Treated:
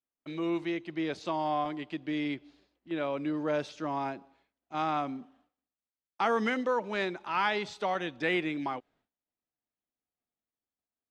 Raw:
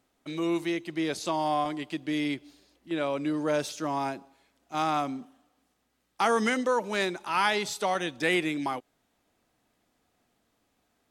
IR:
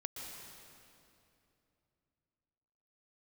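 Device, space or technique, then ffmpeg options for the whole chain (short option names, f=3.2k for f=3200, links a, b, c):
hearing-loss simulation: -af "lowpass=3.5k,agate=range=-33dB:threshold=-59dB:ratio=3:detection=peak,volume=-3dB"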